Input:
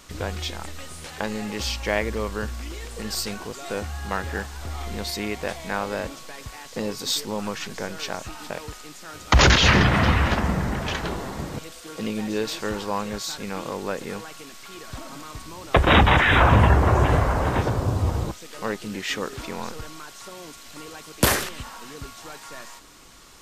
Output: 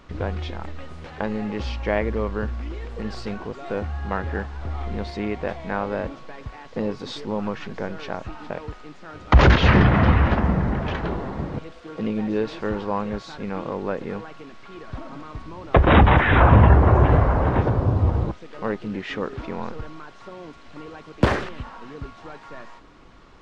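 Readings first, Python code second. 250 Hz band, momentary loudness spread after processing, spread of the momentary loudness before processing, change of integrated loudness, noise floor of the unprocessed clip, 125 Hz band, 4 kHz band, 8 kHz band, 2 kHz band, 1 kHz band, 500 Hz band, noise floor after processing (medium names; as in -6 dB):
+3.0 dB, 24 LU, 22 LU, +1.5 dB, -43 dBFS, +3.5 dB, -8.5 dB, under -15 dB, -2.5 dB, +0.5 dB, +2.0 dB, -45 dBFS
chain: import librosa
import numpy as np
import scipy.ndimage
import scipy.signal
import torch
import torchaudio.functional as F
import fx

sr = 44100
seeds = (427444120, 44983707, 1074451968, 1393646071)

y = fx.spacing_loss(x, sr, db_at_10k=35)
y = F.gain(torch.from_numpy(y), 4.0).numpy()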